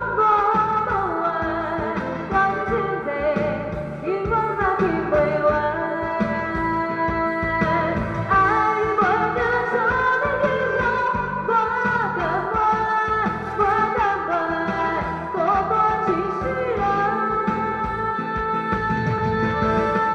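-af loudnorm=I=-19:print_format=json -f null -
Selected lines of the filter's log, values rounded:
"input_i" : "-21.3",
"input_tp" : "-6.7",
"input_lra" : "2.5",
"input_thresh" : "-31.3",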